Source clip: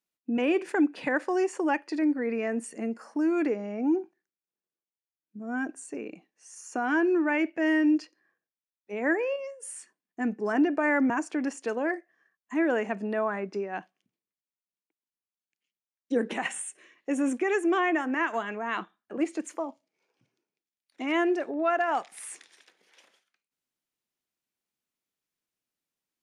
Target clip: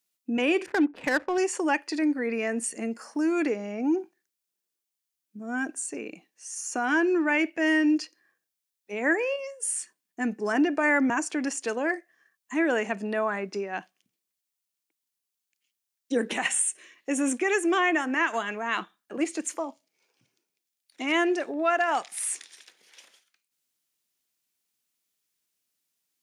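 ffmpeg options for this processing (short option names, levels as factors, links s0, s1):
-filter_complex "[0:a]highshelf=f=2600:g=12,asettb=1/sr,asplit=3[s0][s1][s2];[s0]atrim=end=0.664[s3];[s1]atrim=start=0.66:end=1.38,asetpts=PTS-STARTPTS,afade=t=in:d=0.004:c=qsin,afade=t=out:st=0.716:d=0.004:c=qsin,adynamicsmooth=sensitivity=3.5:basefreq=700[s4];[s2]atrim=start=1.376[s5];[s3][s4]acrossfade=d=0.004:c1=hsin:c2=qsin[s6];[s6][s5]acrossfade=d=0.004:c1=qsin:c2=hsin"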